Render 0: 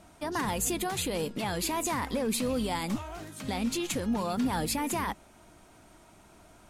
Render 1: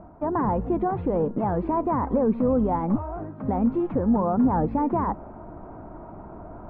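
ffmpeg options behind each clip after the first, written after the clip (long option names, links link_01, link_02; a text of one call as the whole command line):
ffmpeg -i in.wav -af "lowpass=frequency=1100:width=0.5412,lowpass=frequency=1100:width=1.3066,areverse,acompressor=mode=upward:threshold=-39dB:ratio=2.5,areverse,volume=8.5dB" out.wav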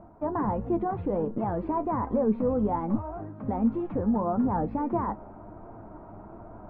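ffmpeg -i in.wav -af "flanger=delay=8.7:depth=1.5:regen=57:speed=1.4:shape=sinusoidal" out.wav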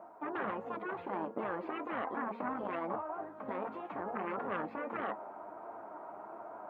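ffmpeg -i in.wav -af "aeval=exprs='0.188*(cos(1*acos(clip(val(0)/0.188,-1,1)))-cos(1*PI/2))+0.0237*(cos(3*acos(clip(val(0)/0.188,-1,1)))-cos(3*PI/2))':channel_layout=same,highpass=630,afftfilt=real='re*lt(hypot(re,im),0.0562)':imag='im*lt(hypot(re,im),0.0562)':win_size=1024:overlap=0.75,volume=8dB" out.wav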